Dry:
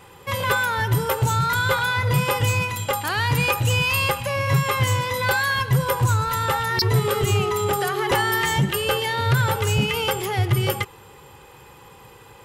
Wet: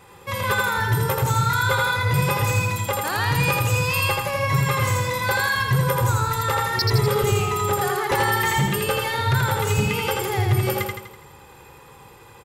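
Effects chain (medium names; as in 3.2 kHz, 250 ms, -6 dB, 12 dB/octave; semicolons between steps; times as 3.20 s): band-stop 3 kHz, Q 11; feedback delay 82 ms, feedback 50%, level -3 dB; trim -2 dB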